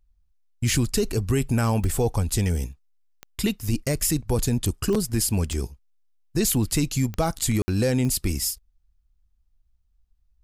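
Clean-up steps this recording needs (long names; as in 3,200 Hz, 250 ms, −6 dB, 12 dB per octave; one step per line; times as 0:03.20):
click removal
ambience match 0:07.62–0:07.68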